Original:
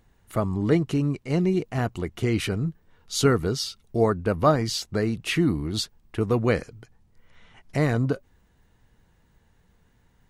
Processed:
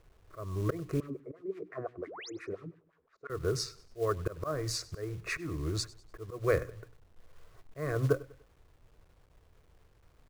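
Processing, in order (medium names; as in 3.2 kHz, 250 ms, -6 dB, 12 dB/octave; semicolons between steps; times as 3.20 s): local Wiener filter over 9 samples; level-controlled noise filter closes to 870 Hz, open at -21 dBFS; peaking EQ 2.8 kHz -3 dB 1.7 oct; hum notches 60/120/180/240/300 Hz; slow attack 310 ms; static phaser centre 850 Hz, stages 6; small resonant body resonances 1.1/2.5 kHz, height 9 dB, ringing for 35 ms; companded quantiser 6-bit; 1.00–3.30 s: wah-wah 5.8 Hz 250–1900 Hz, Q 2.6; 2.07–2.30 s: painted sound rise 250–7600 Hz -46 dBFS; feedback delay 98 ms, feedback 39%, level -20.5 dB; trim +1 dB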